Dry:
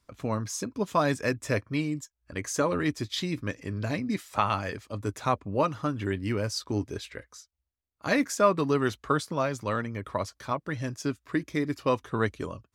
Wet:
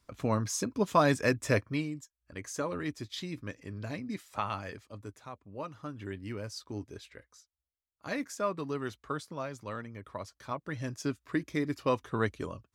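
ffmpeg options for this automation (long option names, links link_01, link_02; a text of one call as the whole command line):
ffmpeg -i in.wav -af "volume=17dB,afade=type=out:start_time=1.54:duration=0.4:silence=0.375837,afade=type=out:start_time=4.76:duration=0.54:silence=0.266073,afade=type=in:start_time=5.3:duration=0.79:silence=0.334965,afade=type=in:start_time=10.22:duration=0.78:silence=0.446684" out.wav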